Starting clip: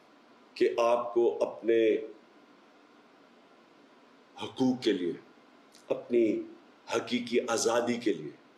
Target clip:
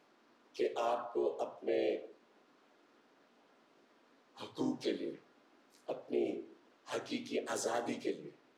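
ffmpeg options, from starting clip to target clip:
ffmpeg -i in.wav -filter_complex "[0:a]asplit=3[link_01][link_02][link_03];[link_02]asetrate=52444,aresample=44100,atempo=0.840896,volume=-2dB[link_04];[link_03]asetrate=58866,aresample=44100,atempo=0.749154,volume=-8dB[link_05];[link_01][link_04][link_05]amix=inputs=3:normalize=0,flanger=delay=6.9:depth=3.1:regen=-73:speed=1.9:shape=triangular,volume=-7dB" out.wav

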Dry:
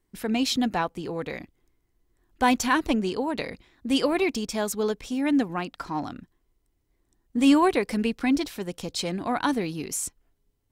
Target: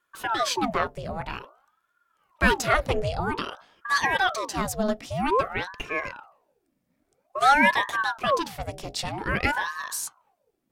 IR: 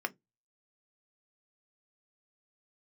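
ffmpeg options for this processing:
-filter_complex "[0:a]bandreject=frequency=59.94:width_type=h:width=4,bandreject=frequency=119.88:width_type=h:width=4,bandreject=frequency=179.82:width_type=h:width=4,bandreject=frequency=239.76:width_type=h:width=4,bandreject=frequency=299.7:width_type=h:width=4,bandreject=frequency=359.64:width_type=h:width=4,bandreject=frequency=419.58:width_type=h:width=4,bandreject=frequency=479.52:width_type=h:width=4,bandreject=frequency=539.46:width_type=h:width=4,asplit=2[link_01][link_02];[1:a]atrim=start_sample=2205[link_03];[link_02][link_03]afir=irnorm=-1:irlink=0,volume=-7.5dB[link_04];[link_01][link_04]amix=inputs=2:normalize=0,aeval=exprs='val(0)*sin(2*PI*810*n/s+810*0.75/0.51*sin(2*PI*0.51*n/s))':channel_layout=same"

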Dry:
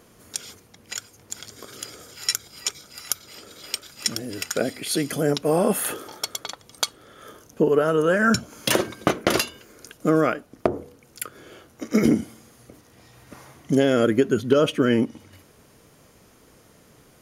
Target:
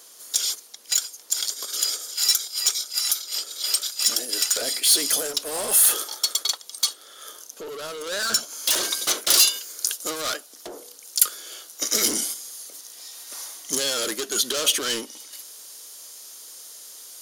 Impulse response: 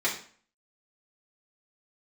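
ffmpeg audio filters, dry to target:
-filter_complex "[0:a]highpass=340,asplit=2[link_01][link_02];[link_02]highpass=frequency=720:poles=1,volume=29dB,asoftclip=type=tanh:threshold=-2.5dB[link_03];[link_01][link_03]amix=inputs=2:normalize=0,lowpass=frequency=3500:poles=1,volume=-6dB,alimiter=limit=-9.5dB:level=0:latency=1:release=13,aexciter=amount=5:drive=5.4:freq=3400,asetnsamples=nb_out_samples=441:pad=0,asendcmd='8.83 highshelf g 11',highshelf=frequency=3000:gain=4.5,agate=range=-6dB:threshold=-11dB:ratio=16:detection=peak,volume=-16.5dB"

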